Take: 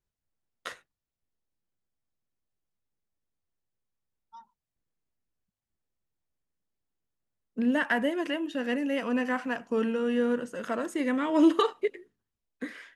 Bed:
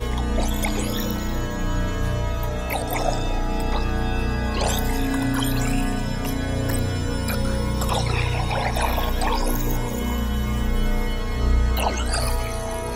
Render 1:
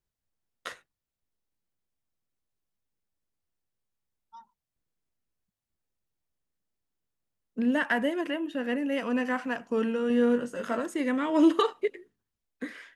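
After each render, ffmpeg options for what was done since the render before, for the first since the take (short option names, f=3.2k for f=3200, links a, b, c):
-filter_complex "[0:a]asettb=1/sr,asplit=3[a][b][c];[a]atrim=end=8.214[d];[b]atrim=start=8.21:end=8.92,asetpts=PTS-STARTPTS,afade=t=in:d=0.004:c=qsin,afade=t=out:st=0.706:d=0.004:c=qsin,equalizer=f=5.7k:t=o:w=1.4:g=-7[e];[c]atrim=start=8.916[f];[d][e]acrossfade=d=0.004:c1=hsin:c2=qsin[g];[g][f]acrossfade=d=0.004:c1=qsin:c2=hsin,asettb=1/sr,asplit=3[h][i][j];[h]atrim=end=10.084[k];[i]atrim=start=10.08:end=10.8,asetpts=PTS-STARTPTS,afade=t=in:d=0.004:c=qsin,afade=t=out:st=0.716:d=0.004:c=qsin,asplit=2[l][m];[m]adelay=21,volume=-5.5dB[n];[l][n]amix=inputs=2:normalize=0,atrim=end_sample=31752[o];[j]atrim=start=10.796[p];[k][o]acrossfade=d=0.004:c1=hsin:c2=qsin[q];[q][p]acrossfade=d=0.004:c1=qsin:c2=hsin"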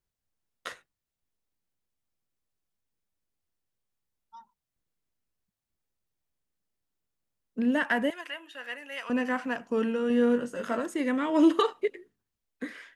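-filter_complex "[0:a]asettb=1/sr,asplit=3[a][b][c];[a]atrim=end=8.104[d];[b]atrim=start=8.1:end=9.1,asetpts=PTS-STARTPTS,afade=t=in:d=0.004:c=qsin,afade=t=out:st=0.996:d=0.004:c=qsin,highpass=1.1k[e];[c]atrim=start=9.096[f];[d][e]acrossfade=d=0.004:c1=hsin:c2=qsin[g];[g][f]acrossfade=d=0.004:c1=qsin:c2=hsin"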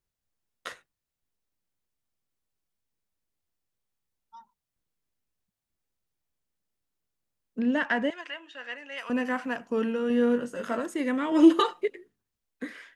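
-filter_complex "[0:a]asettb=1/sr,asplit=3[a][b][c];[a]atrim=end=7.594[d];[b]atrim=start=7.59:end=8.98,asetpts=PTS-STARTPTS,afade=t=in:d=0.004:c=qsin,afade=t=out:st=1.386:d=0.004:c=qsin,lowpass=f=6.9k:w=0.5412,lowpass=f=6.9k:w=1.3066[e];[c]atrim=start=8.976[f];[d][e]acrossfade=d=0.004:c1=hsin:c2=qsin[g];[g][f]acrossfade=d=0.004:c1=qsin:c2=hsin,asettb=1/sr,asplit=3[h][i][j];[h]atrim=end=9.714[k];[i]atrim=start=9.71:end=10.43,asetpts=PTS-STARTPTS,afade=t=in:d=0.004:c=qsin,afade=t=out:st=0.716:d=0.004:c=qsin,equalizer=f=8.2k:w=3.9:g=-6[l];[j]atrim=start=10.426[m];[k][l]acrossfade=d=0.004:c1=hsin:c2=qsin[n];[n][m]acrossfade=d=0.004:c1=qsin:c2=hsin,asettb=1/sr,asplit=3[o][p][q];[o]atrim=end=11.314[r];[p]atrim=start=11.31:end=11.83,asetpts=PTS-STARTPTS,afade=t=in:d=0.004:c=qsin,afade=t=out:st=0.516:d=0.004:c=qsin,aecho=1:1:5.7:0.91,atrim=end_sample=22932[s];[q]atrim=start=11.826[t];[r][s]acrossfade=d=0.004:c1=hsin:c2=qsin[u];[u][t]acrossfade=d=0.004:c1=qsin:c2=hsin"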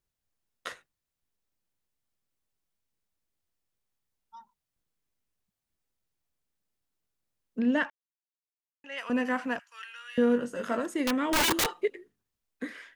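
-filter_complex "[0:a]asettb=1/sr,asplit=3[a][b][c];[a]atrim=end=9.594[d];[b]atrim=start=9.59:end=10.18,asetpts=PTS-STARTPTS,afade=t=in:d=0.004:c=qsin,afade=t=out:st=0.586:d=0.004:c=qsin,highpass=f=1.5k:w=0.5412,highpass=f=1.5k:w=1.3066[e];[c]atrim=start=10.176[f];[d][e]acrossfade=d=0.004:c1=hsin:c2=qsin[g];[g][f]acrossfade=d=0.004:c1=qsin:c2=hsin,asettb=1/sr,asplit=3[h][i][j];[h]atrim=end=11.064[k];[i]atrim=start=11.06:end=11.68,asetpts=PTS-STARTPTS,afade=t=in:d=0.004:c=qsin,afade=t=out:st=0.616:d=0.004:c=qsin,aeval=exprs='(mod(10*val(0)+1,2)-1)/10':c=same[l];[j]atrim=start=11.676[m];[k][l]acrossfade=d=0.004:c1=hsin:c2=qsin[n];[n][m]acrossfade=d=0.004:c1=qsin:c2=hsin,asplit=3[o][p][q];[o]atrim=end=7.9,asetpts=PTS-STARTPTS,afade=t=out:st=7.896:d=0.004:c=hsin[r];[p]atrim=start=7.9:end=8.84,asetpts=PTS-STARTPTS,volume=0[s];[q]atrim=start=8.84,asetpts=PTS-STARTPTS,afade=t=in:d=0.004:c=hsin[t];[r][s][t]concat=n=3:v=0:a=1"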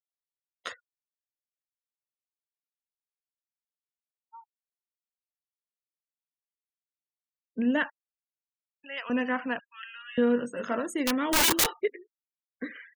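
-af "afftfilt=real='re*gte(hypot(re,im),0.00562)':imag='im*gte(hypot(re,im),0.00562)':win_size=1024:overlap=0.75,highshelf=f=4.5k:g=7"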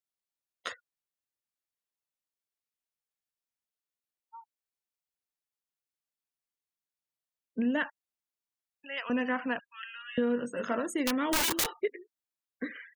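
-af "acompressor=threshold=-26dB:ratio=3"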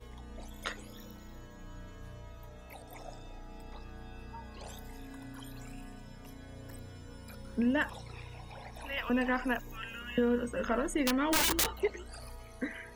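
-filter_complex "[1:a]volume=-24dB[a];[0:a][a]amix=inputs=2:normalize=0"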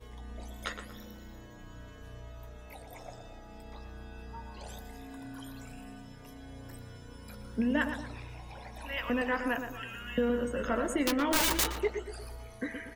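-filter_complex "[0:a]asplit=2[a][b];[b]adelay=14,volume=-11.5dB[c];[a][c]amix=inputs=2:normalize=0,asplit=2[d][e];[e]adelay=118,lowpass=f=2k:p=1,volume=-7dB,asplit=2[f][g];[g]adelay=118,lowpass=f=2k:p=1,volume=0.44,asplit=2[h][i];[i]adelay=118,lowpass=f=2k:p=1,volume=0.44,asplit=2[j][k];[k]adelay=118,lowpass=f=2k:p=1,volume=0.44,asplit=2[l][m];[m]adelay=118,lowpass=f=2k:p=1,volume=0.44[n];[d][f][h][j][l][n]amix=inputs=6:normalize=0"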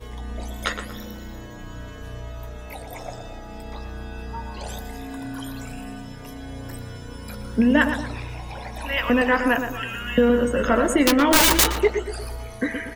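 -af "volume=11.5dB"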